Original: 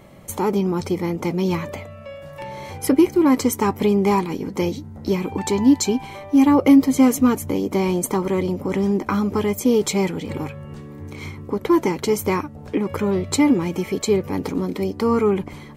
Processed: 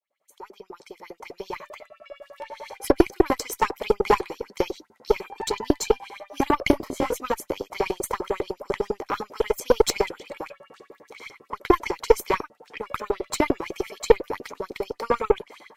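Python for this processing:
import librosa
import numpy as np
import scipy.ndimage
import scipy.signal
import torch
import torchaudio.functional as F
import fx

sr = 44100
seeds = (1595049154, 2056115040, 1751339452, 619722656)

y = fx.fade_in_head(x, sr, length_s=2.68)
y = fx.filter_lfo_highpass(y, sr, shape='saw_up', hz=10.0, low_hz=350.0, high_hz=5600.0, q=4.4)
y = fx.cheby_harmonics(y, sr, harmonics=(4, 6, 7, 8), levels_db=(-14, -27, -24, -43), full_scale_db=1.0)
y = fx.detune_double(y, sr, cents=fx.line((6.71, 28.0), (7.15, 42.0)), at=(6.71, 7.15), fade=0.02)
y = y * 10.0 ** (-3.0 / 20.0)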